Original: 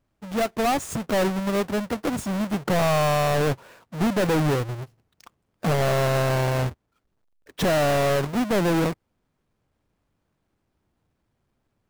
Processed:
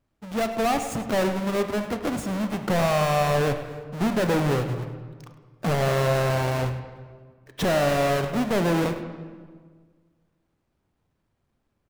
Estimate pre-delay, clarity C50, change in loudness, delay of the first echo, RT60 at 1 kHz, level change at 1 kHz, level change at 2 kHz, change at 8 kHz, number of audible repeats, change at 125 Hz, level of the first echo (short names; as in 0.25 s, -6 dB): 20 ms, 8.0 dB, -1.0 dB, 0.103 s, 1.5 s, -0.5 dB, -0.5 dB, -2.0 dB, 1, -1.0 dB, -14.5 dB